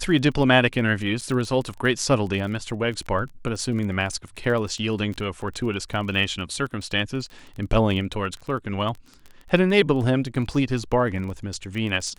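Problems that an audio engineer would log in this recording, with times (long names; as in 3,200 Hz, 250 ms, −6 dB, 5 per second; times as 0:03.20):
surface crackle 22 per second −30 dBFS
0:01.21–0:01.22: drop-out 6.2 ms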